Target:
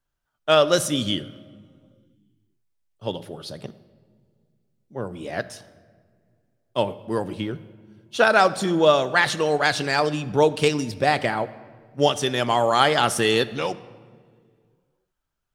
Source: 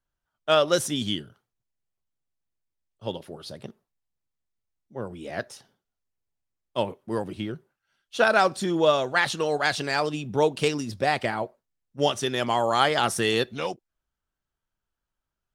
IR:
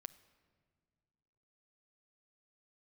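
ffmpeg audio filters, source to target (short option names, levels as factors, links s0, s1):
-filter_complex "[1:a]atrim=start_sample=2205[s0];[0:a][s0]afir=irnorm=-1:irlink=0,volume=2.82"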